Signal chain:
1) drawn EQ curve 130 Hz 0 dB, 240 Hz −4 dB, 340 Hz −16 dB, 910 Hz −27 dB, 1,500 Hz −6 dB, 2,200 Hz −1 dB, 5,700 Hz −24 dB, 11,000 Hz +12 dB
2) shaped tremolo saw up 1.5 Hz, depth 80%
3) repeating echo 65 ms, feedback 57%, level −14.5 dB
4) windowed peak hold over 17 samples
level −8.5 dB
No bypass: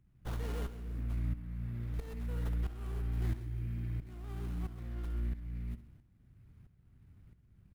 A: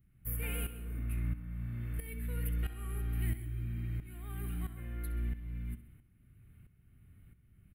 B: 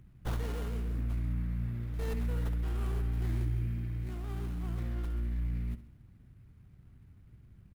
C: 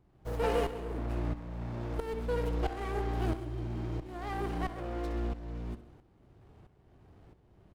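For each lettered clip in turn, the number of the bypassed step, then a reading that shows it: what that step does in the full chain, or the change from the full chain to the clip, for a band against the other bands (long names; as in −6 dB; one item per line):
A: 4, distortion level −11 dB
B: 2, change in integrated loudness +4.0 LU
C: 1, 125 Hz band −10.5 dB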